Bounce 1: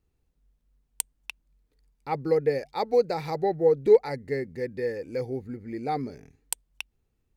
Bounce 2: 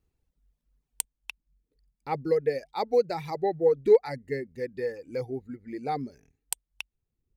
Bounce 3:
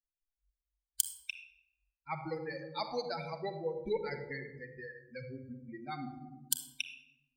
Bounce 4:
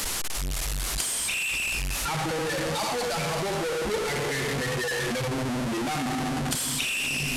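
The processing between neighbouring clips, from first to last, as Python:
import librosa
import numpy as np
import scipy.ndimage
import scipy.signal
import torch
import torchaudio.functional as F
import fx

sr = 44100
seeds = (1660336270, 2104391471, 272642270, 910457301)

y1 = fx.dereverb_blind(x, sr, rt60_s=1.2)
y1 = F.gain(torch.from_numpy(y1), -1.0).numpy()
y2 = fx.bin_expand(y1, sr, power=3.0)
y2 = fx.room_shoebox(y2, sr, seeds[0], volume_m3=3200.0, walls='furnished', distance_m=1.5)
y2 = fx.spectral_comp(y2, sr, ratio=2.0)
y2 = F.gain(torch.from_numpy(y2), 1.0).numpy()
y3 = fx.delta_mod(y2, sr, bps=64000, step_db=-26.0)
y3 = F.gain(torch.from_numpy(y3), 4.0).numpy()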